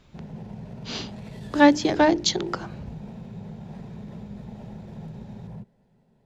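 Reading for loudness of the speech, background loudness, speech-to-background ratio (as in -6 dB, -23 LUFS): -22.0 LUFS, -40.0 LUFS, 18.0 dB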